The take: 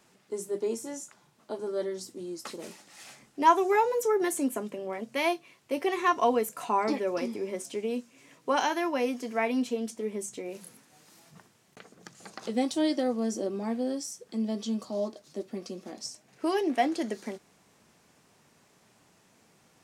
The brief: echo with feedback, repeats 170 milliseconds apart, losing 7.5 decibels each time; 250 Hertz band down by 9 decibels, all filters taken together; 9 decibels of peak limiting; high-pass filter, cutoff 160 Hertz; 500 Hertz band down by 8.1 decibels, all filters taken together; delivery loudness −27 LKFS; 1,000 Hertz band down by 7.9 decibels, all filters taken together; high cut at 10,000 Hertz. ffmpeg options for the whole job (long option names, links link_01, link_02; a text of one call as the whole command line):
ffmpeg -i in.wav -af "highpass=160,lowpass=10000,equalizer=frequency=250:width_type=o:gain=-8,equalizer=frequency=500:width_type=o:gain=-6,equalizer=frequency=1000:width_type=o:gain=-7,alimiter=limit=-24dB:level=0:latency=1,aecho=1:1:170|340|510|680|850:0.422|0.177|0.0744|0.0312|0.0131,volume=10.5dB" out.wav